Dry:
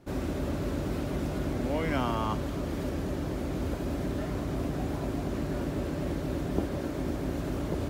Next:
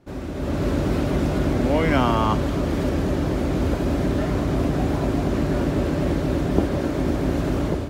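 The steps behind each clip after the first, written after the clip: treble shelf 9.2 kHz -8 dB; level rider gain up to 10 dB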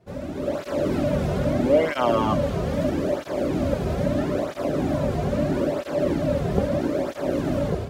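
peaking EQ 580 Hz +9.5 dB 0.33 oct; cancelling through-zero flanger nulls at 0.77 Hz, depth 3.7 ms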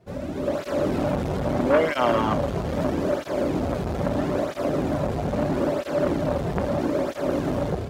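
transformer saturation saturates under 870 Hz; trim +1.5 dB

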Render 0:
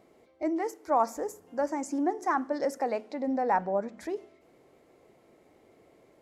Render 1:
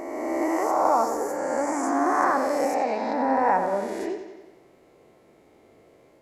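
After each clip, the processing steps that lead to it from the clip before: reverse spectral sustain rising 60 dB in 2.20 s; on a send: bucket-brigade echo 90 ms, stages 4096, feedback 60%, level -9 dB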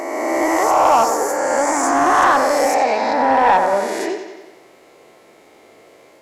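treble shelf 4 kHz +9.5 dB; overdrive pedal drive 15 dB, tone 4.2 kHz, clips at -5.5 dBFS; trim +2.5 dB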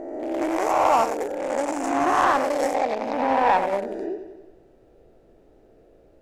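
local Wiener filter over 41 samples; added noise brown -54 dBFS; trim -4 dB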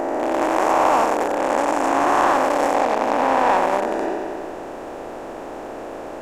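spectral levelling over time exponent 0.4; trim -2 dB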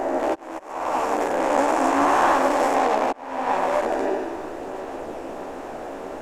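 hum notches 50/100/150/200 Hz; slow attack 731 ms; chorus voices 4, 0.76 Hz, delay 13 ms, depth 2.6 ms; trim +2 dB

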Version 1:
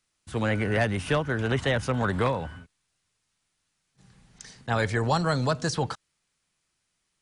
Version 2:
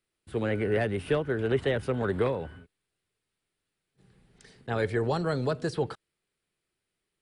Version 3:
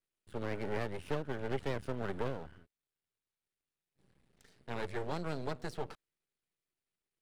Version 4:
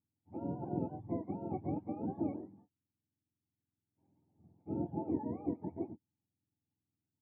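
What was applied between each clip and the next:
fifteen-band graphic EQ 400 Hz +10 dB, 1 kHz -4 dB, 6.3 kHz -12 dB; trim -5 dB
half-wave rectifier; trim -6 dB
spectrum inverted on a logarithmic axis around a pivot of 550 Hz; cascade formant filter u; trim +13 dB

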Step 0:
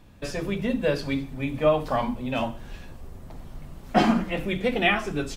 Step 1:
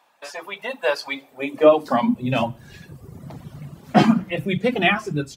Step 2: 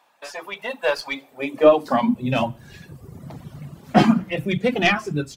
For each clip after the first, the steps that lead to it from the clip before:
reverb removal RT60 1.2 s; level rider gain up to 8 dB; high-pass sweep 830 Hz -> 130 Hz, 1.01–2.32 s; trim -1.5 dB
tracing distortion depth 0.037 ms

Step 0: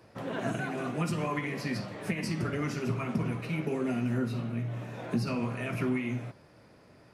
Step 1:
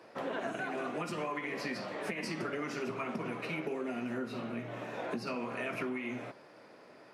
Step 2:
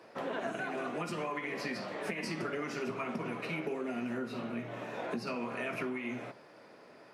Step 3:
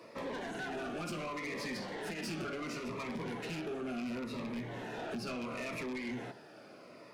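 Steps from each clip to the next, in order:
high-pass 330 Hz 12 dB/octave; treble shelf 6.1 kHz -9.5 dB; compression, threshold -38 dBFS, peak gain reduction 8.5 dB; trim +4.5 dB
reverberation, pre-delay 3 ms, DRR 15 dB
rattle on loud lows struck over -39 dBFS, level -34 dBFS; saturation -38.5 dBFS, distortion -10 dB; Shepard-style phaser falling 0.71 Hz; trim +4 dB

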